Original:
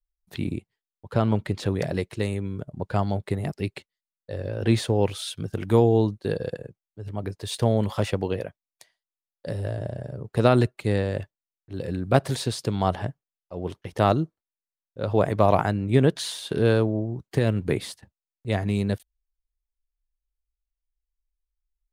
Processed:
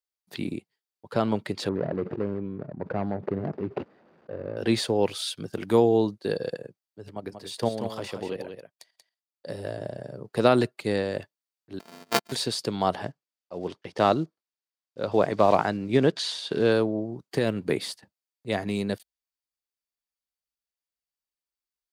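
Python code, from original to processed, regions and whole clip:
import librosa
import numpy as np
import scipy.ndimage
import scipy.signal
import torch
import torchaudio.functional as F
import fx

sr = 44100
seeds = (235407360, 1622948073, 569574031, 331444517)

y = fx.chain(x, sr, fx.median_filter(points=41),
    fx.lowpass(hz=1500.0, slope=12),
    fx.sustainer(db_per_s=20.0), at=(1.69, 4.57))
y = fx.chain(y, sr, fx.level_steps(step_db=10),
    fx.echo_single(ms=185, db=-7.5), at=(7.1, 9.57))
y = fx.chain(y, sr, fx.sample_sort(block=128),
    fx.comb(ms=4.5, depth=0.7),
    fx.power_curve(exponent=2.0), at=(11.79, 12.32))
y = fx.chain(y, sr, fx.block_float(bits=7),
    fx.lowpass(hz=6500.0, slope=12), at=(13.05, 16.72))
y = scipy.signal.sosfilt(scipy.signal.butter(2, 200.0, 'highpass', fs=sr, output='sos'), y)
y = fx.peak_eq(y, sr, hz=4500.0, db=8.0, octaves=0.31)
y = fx.notch(y, sr, hz=4200.0, q=18.0)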